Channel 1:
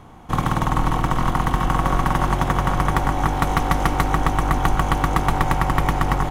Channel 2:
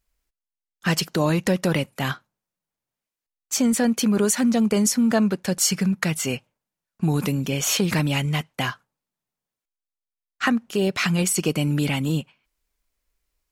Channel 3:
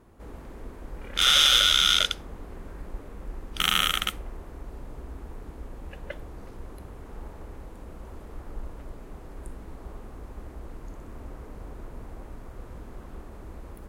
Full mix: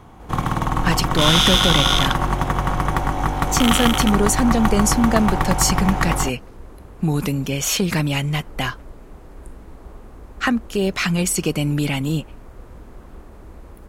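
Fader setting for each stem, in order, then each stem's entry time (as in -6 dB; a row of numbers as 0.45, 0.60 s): -1.0, +1.5, +1.5 dB; 0.00, 0.00, 0.00 s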